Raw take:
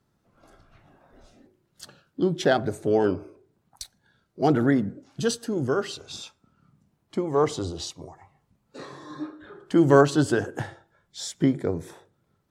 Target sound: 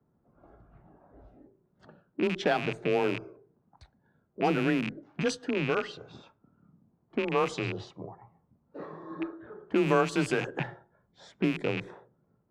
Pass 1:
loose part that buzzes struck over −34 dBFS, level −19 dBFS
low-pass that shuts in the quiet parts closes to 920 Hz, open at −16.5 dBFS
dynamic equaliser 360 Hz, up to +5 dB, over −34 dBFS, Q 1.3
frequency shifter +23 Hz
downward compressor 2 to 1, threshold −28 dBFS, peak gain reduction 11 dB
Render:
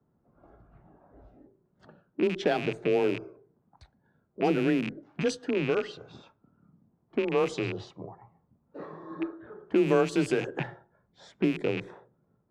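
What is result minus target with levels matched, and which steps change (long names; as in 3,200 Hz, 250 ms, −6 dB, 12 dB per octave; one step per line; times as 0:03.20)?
1,000 Hz band −4.0 dB
change: dynamic equaliser 1,100 Hz, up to +5 dB, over −34 dBFS, Q 1.3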